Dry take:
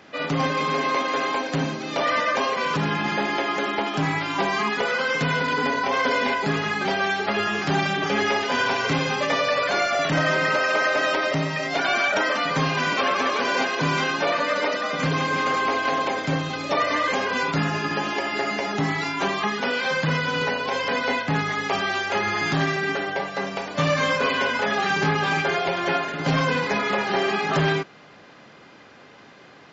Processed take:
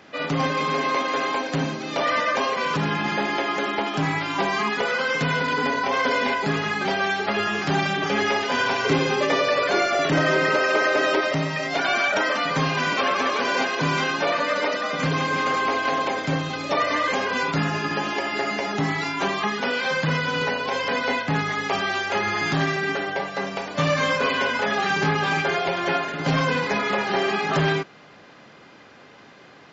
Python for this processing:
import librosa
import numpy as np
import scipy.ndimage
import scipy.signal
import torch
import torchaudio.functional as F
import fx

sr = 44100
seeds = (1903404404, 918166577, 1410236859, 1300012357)

y = fx.peak_eq(x, sr, hz=370.0, db=10.5, octaves=0.51, at=(8.85, 11.21))